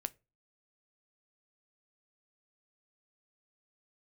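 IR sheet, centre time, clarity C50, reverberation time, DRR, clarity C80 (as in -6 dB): 2 ms, 25.0 dB, 0.30 s, 13.0 dB, 32.0 dB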